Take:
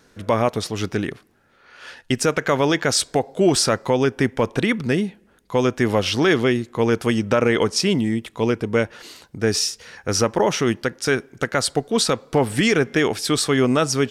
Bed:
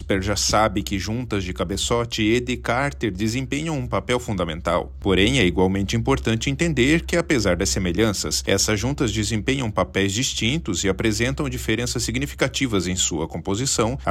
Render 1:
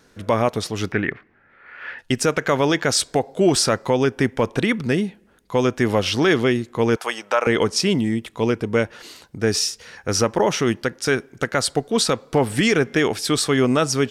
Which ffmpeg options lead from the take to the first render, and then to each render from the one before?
ffmpeg -i in.wav -filter_complex "[0:a]asettb=1/sr,asplit=3[link_01][link_02][link_03];[link_01]atrim=end=0.924[link_04];[link_02]atrim=start=0.92:end=1.99,asetpts=PTS-STARTPTS,afade=type=in:duration=0.004:curve=qsin,afade=type=out:start_time=1.066:duration=0.004:curve=qsin,lowpass=frequency=2000:width_type=q:width=3.1[link_05];[link_03]atrim=start=1.986[link_06];[link_04][link_05]acrossfade=duration=0.004:curve1=hsin:curve2=qsin[link_07];[link_07][link_06]acrossfade=duration=0.004:curve1=qsin:curve2=hsin,asettb=1/sr,asplit=3[link_08][link_09][link_10];[link_08]atrim=end=6.964[link_11];[link_09]atrim=start=6.96:end=7.47,asetpts=PTS-STARTPTS,afade=type=in:duration=0.004:curve=qsin,afade=type=out:start_time=0.506:duration=0.004:curve=qsin,highpass=frequency=790:width_type=q:width=1.6[link_12];[link_10]atrim=start=7.466[link_13];[link_11][link_12]acrossfade=duration=0.004:curve1=hsin:curve2=qsin[link_14];[link_14][link_13]acrossfade=duration=0.004:curve1=qsin:curve2=hsin" out.wav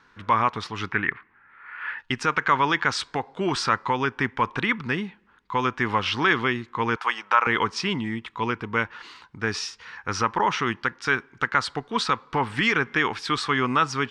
ffmpeg -i in.wav -af "lowpass=3200,lowshelf=frequency=790:width_type=q:width=3:gain=-7.5" out.wav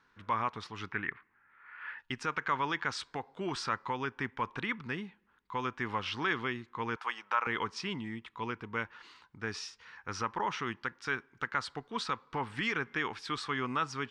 ffmpeg -i in.wav -af "volume=-11dB" out.wav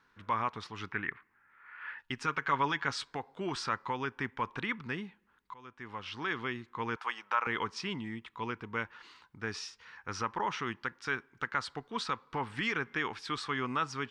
ffmpeg -i in.wav -filter_complex "[0:a]asettb=1/sr,asplit=3[link_01][link_02][link_03];[link_01]atrim=end=2.194[link_04];[link_02]atrim=start=2.19:end=3.05,asetpts=PTS-STARTPTS,afade=type=in:duration=0.004:curve=qsin,afade=type=out:start_time=0.856:duration=0.004:curve=qsin,aecho=1:1:7.2:0.52,atrim=end_sample=37926[link_05];[link_03]atrim=start=3.046[link_06];[link_04][link_05]acrossfade=duration=0.004:curve1=hsin:curve2=qsin[link_07];[link_07][link_06]acrossfade=duration=0.004:curve1=qsin:curve2=hsin,asplit=2[link_08][link_09];[link_08]atrim=end=5.54,asetpts=PTS-STARTPTS,afade=type=out:start_time=5.536:duration=0.004:curve=hsin:silence=0.0668344[link_10];[link_09]atrim=start=5.54,asetpts=PTS-STARTPTS,afade=type=in:duration=1.12:silence=0.0668344[link_11];[link_10][link_11]concat=n=2:v=0:a=1" out.wav

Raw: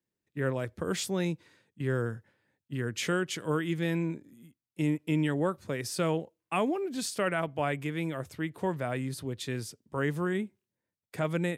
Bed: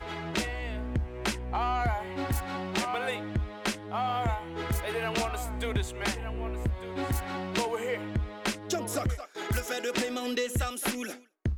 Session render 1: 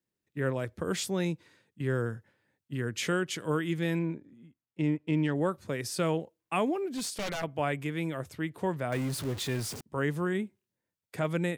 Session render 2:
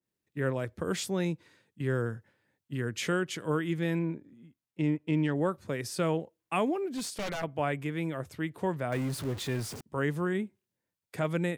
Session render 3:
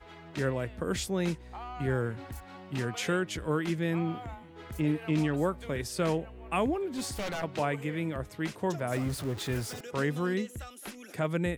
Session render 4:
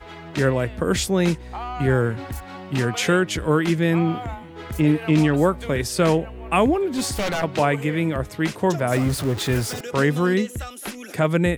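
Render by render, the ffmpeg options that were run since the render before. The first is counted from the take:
ffmpeg -i in.wav -filter_complex "[0:a]asettb=1/sr,asplit=3[link_01][link_02][link_03];[link_01]atrim=end=3.994[link_04];[link_02]atrim=start=3.99:end=5.35,asetpts=PTS-STARTPTS,afade=type=in:duration=0.004:curve=qsin,afade=type=out:start_time=1.356:duration=0.004:curve=qsin,adynamicsmooth=sensitivity=2.5:basefreq=3300[link_05];[link_03]atrim=start=5.346[link_06];[link_04][link_05]acrossfade=duration=0.004:curve1=hsin:curve2=qsin[link_07];[link_07][link_06]acrossfade=duration=0.004:curve1=qsin:curve2=hsin,asplit=3[link_08][link_09][link_10];[link_08]afade=type=out:start_time=6.9:duration=0.02[link_11];[link_09]aeval=exprs='0.0376*(abs(mod(val(0)/0.0376+3,4)-2)-1)':channel_layout=same,afade=type=in:start_time=6.9:duration=0.02,afade=type=out:start_time=7.42:duration=0.02[link_12];[link_10]afade=type=in:start_time=7.42:duration=0.02[link_13];[link_11][link_12][link_13]amix=inputs=3:normalize=0,asettb=1/sr,asplit=3[link_14][link_15][link_16];[link_14]atrim=end=8.924[link_17];[link_15]atrim=start=8.92:end=9.81,asetpts=PTS-STARTPTS,afade=type=in:duration=0.004:curve=qsin,afade=type=out:start_time=0.886:duration=0.004:curve=qsin,aeval=exprs='val(0)+0.5*0.0168*sgn(val(0))':channel_layout=same[link_18];[link_16]atrim=start=9.806[link_19];[link_17][link_18]acrossfade=duration=0.004:curve1=hsin:curve2=qsin[link_20];[link_20][link_19]acrossfade=duration=0.004:curve1=qsin:curve2=hsin" out.wav
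ffmpeg -i in.wav -af "adynamicequalizer=threshold=0.00447:dfrequency=2400:dqfactor=0.7:tfrequency=2400:tqfactor=0.7:attack=5:release=100:ratio=0.375:range=2:mode=cutabove:tftype=highshelf" out.wav
ffmpeg -i in.wav -i bed.wav -filter_complex "[1:a]volume=-12.5dB[link_01];[0:a][link_01]amix=inputs=2:normalize=0" out.wav
ffmpeg -i in.wav -af "volume=10.5dB" out.wav

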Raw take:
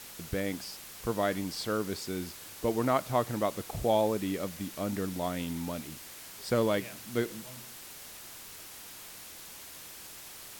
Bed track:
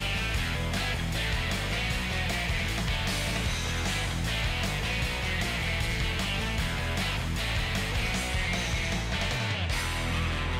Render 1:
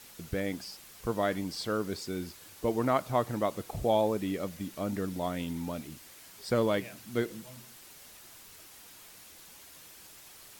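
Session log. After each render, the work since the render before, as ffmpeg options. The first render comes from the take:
ffmpeg -i in.wav -af "afftdn=noise_reduction=6:noise_floor=-47" out.wav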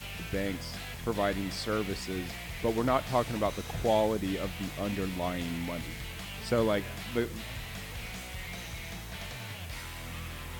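ffmpeg -i in.wav -i bed.wav -filter_complex "[1:a]volume=-11.5dB[link_01];[0:a][link_01]amix=inputs=2:normalize=0" out.wav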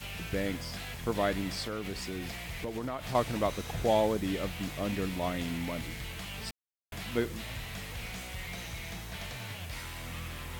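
ffmpeg -i in.wav -filter_complex "[0:a]asettb=1/sr,asplit=3[link_01][link_02][link_03];[link_01]atrim=end=1.634[link_04];[link_02]atrim=start=1.63:end=3.15,asetpts=PTS-STARTPTS,afade=type=in:duration=0.004:curve=qsin,afade=type=out:start_time=1.516:duration=0.004:curve=qsin,acompressor=threshold=-32dB:ratio=6:attack=3.2:release=140:knee=1:detection=peak[link_05];[link_03]atrim=start=3.146[link_06];[link_04][link_05]acrossfade=duration=0.004:curve1=hsin:curve2=qsin[link_07];[link_07][link_06]acrossfade=duration=0.004:curve1=qsin:curve2=hsin,asplit=3[link_08][link_09][link_10];[link_08]atrim=end=6.51,asetpts=PTS-STARTPTS,afade=type=out:start_time=6.506:duration=0.004:curve=hsin[link_11];[link_09]atrim=start=6.51:end=6.92,asetpts=PTS-STARTPTS,volume=0[link_12];[link_10]atrim=start=6.92,asetpts=PTS-STARTPTS,afade=type=in:duration=0.004:curve=hsin[link_13];[link_11][link_12][link_13]concat=n=3:v=0:a=1" out.wav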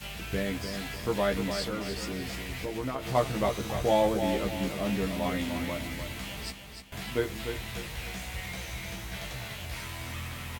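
ffmpeg -i in.wav -filter_complex "[0:a]asplit=2[link_01][link_02];[link_02]adelay=15,volume=-3.5dB[link_03];[link_01][link_03]amix=inputs=2:normalize=0,aecho=1:1:299|598|897|1196:0.422|0.164|0.0641|0.025" out.wav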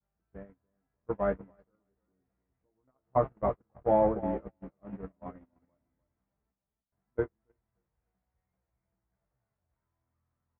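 ffmpeg -i in.wav -af "agate=range=-43dB:threshold=-26dB:ratio=16:detection=peak,lowpass=frequency=1400:width=0.5412,lowpass=frequency=1400:width=1.3066" out.wav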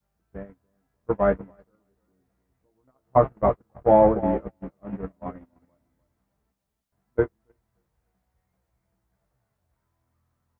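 ffmpeg -i in.wav -af "volume=8.5dB" out.wav

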